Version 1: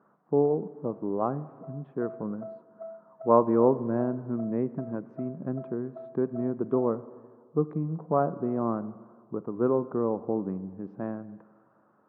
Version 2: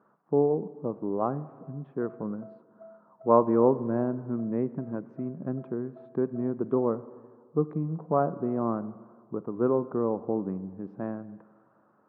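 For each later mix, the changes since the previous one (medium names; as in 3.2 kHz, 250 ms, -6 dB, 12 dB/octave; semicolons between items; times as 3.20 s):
background -8.0 dB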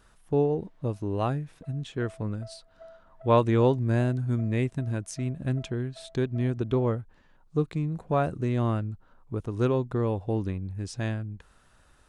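speech: send off; master: remove Chebyshev band-pass 170–1200 Hz, order 3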